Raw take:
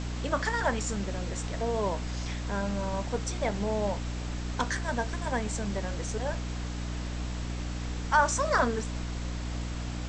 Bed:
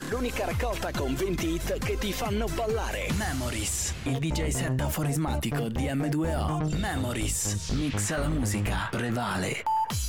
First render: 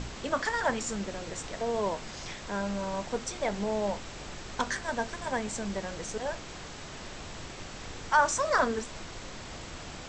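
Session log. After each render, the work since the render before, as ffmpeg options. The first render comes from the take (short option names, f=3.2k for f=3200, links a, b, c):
-af "bandreject=f=60:t=h:w=4,bandreject=f=120:t=h:w=4,bandreject=f=180:t=h:w=4,bandreject=f=240:t=h:w=4,bandreject=f=300:t=h:w=4"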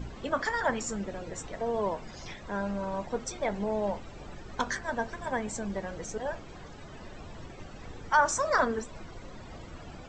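-af "afftdn=nr=14:nf=-43"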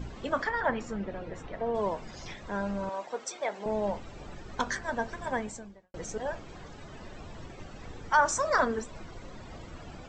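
-filter_complex "[0:a]asettb=1/sr,asplit=3[a][b][c];[a]atrim=end=0.444[d];[b]atrim=start=0.44:end=1.75,asetpts=PTS-STARTPTS,afade=t=in:d=0.004:c=qsin,afade=t=out:st=1.306:d=0.004:c=qsin,lowpass=3k[e];[c]atrim=start=1.746[f];[d][e]acrossfade=d=0.004:c1=hsin:c2=qsin[g];[g][f]acrossfade=d=0.004:c1=qsin:c2=hsin,asettb=1/sr,asplit=3[h][i][j];[h]atrim=end=2.894[k];[i]atrim=start=2.89:end=3.66,asetpts=PTS-STARTPTS,afade=t=in:d=0.004:c=qsin,afade=t=out:st=0.766:d=0.004:c=qsin,highpass=470[l];[j]atrim=start=3.656[m];[k][l]acrossfade=d=0.004:c1=hsin:c2=qsin[n];[n][m]acrossfade=d=0.004:c1=qsin:c2=hsin,asplit=2[o][p];[o]atrim=end=5.94,asetpts=PTS-STARTPTS,afade=t=out:st=5.39:d=0.55:c=qua[q];[p]atrim=start=5.94,asetpts=PTS-STARTPTS,afade=t=in:d=0.004:c=hsin[r];[q][r]concat=n=2:v=0:a=1"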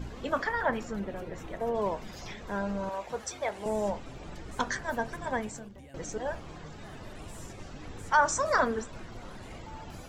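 -filter_complex "[1:a]volume=-22.5dB[a];[0:a][a]amix=inputs=2:normalize=0"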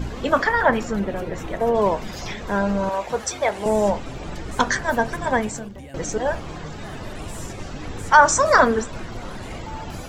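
-af "volume=11dB"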